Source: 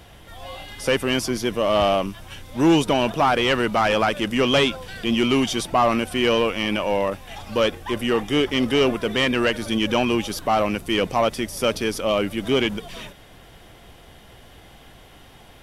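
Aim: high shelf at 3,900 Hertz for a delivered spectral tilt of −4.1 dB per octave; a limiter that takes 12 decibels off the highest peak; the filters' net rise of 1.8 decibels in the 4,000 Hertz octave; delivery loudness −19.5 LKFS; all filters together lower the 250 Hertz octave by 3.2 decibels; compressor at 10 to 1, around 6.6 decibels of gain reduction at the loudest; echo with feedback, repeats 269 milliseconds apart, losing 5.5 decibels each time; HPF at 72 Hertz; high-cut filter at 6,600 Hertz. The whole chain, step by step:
high-pass filter 72 Hz
low-pass filter 6,600 Hz
parametric band 250 Hz −4 dB
high-shelf EQ 3,900 Hz −5 dB
parametric band 4,000 Hz +6 dB
downward compressor 10 to 1, threshold −21 dBFS
brickwall limiter −21.5 dBFS
repeating echo 269 ms, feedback 53%, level −5.5 dB
level +11 dB

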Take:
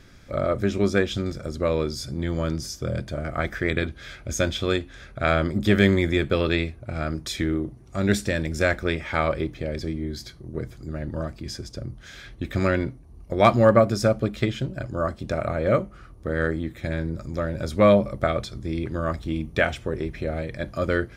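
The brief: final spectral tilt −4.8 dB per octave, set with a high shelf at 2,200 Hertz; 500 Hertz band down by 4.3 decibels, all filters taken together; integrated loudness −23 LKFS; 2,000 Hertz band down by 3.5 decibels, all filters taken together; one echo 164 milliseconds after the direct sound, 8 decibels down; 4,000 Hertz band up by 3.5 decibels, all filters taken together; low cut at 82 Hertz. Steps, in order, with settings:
high-pass filter 82 Hz
parametric band 500 Hz −5 dB
parametric band 2,000 Hz −4.5 dB
high-shelf EQ 2,200 Hz −3.5 dB
parametric band 4,000 Hz +9 dB
single-tap delay 164 ms −8 dB
level +4 dB

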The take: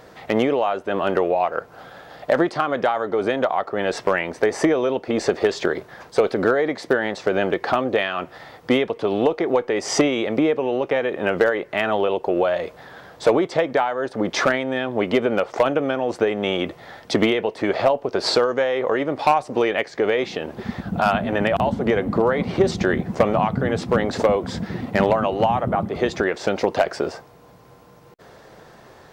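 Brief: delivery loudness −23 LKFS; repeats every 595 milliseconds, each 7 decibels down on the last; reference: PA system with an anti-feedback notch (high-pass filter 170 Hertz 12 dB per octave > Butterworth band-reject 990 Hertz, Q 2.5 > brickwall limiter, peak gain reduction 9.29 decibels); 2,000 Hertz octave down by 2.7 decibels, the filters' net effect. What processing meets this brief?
high-pass filter 170 Hz 12 dB per octave
Butterworth band-reject 990 Hz, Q 2.5
parametric band 2,000 Hz −3.5 dB
repeating echo 595 ms, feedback 45%, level −7 dB
level +1 dB
brickwall limiter −12 dBFS

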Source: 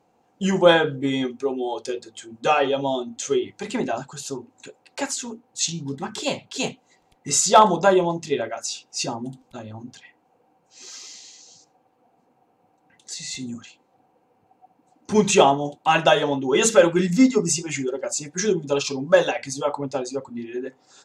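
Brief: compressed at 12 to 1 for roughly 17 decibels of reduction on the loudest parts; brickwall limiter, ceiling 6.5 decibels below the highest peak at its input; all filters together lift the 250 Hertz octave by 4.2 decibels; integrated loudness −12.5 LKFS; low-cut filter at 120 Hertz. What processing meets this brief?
high-pass filter 120 Hz
parametric band 250 Hz +5.5 dB
downward compressor 12 to 1, threshold −24 dBFS
level +19 dB
brickwall limiter −1.5 dBFS

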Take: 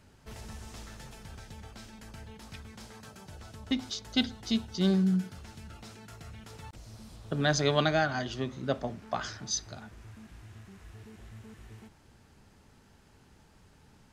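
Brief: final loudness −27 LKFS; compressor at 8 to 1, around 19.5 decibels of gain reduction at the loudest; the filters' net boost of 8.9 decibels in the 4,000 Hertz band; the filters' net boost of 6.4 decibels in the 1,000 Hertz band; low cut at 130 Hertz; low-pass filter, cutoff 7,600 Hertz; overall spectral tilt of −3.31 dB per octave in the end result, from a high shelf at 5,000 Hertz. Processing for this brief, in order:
high-pass filter 130 Hz
low-pass filter 7,600 Hz
parametric band 1,000 Hz +8.5 dB
parametric band 4,000 Hz +8.5 dB
high-shelf EQ 5,000 Hz +4.5 dB
downward compressor 8 to 1, threshold −37 dBFS
level +16 dB

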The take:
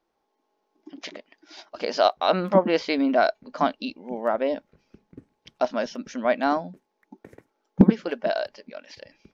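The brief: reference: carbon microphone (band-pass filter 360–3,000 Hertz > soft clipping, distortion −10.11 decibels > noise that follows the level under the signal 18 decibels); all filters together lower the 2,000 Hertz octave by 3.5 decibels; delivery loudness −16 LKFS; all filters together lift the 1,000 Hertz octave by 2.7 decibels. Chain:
band-pass filter 360–3,000 Hz
parametric band 1,000 Hz +6 dB
parametric band 2,000 Hz −7.5 dB
soft clipping −17 dBFS
noise that follows the level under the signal 18 dB
level +12 dB

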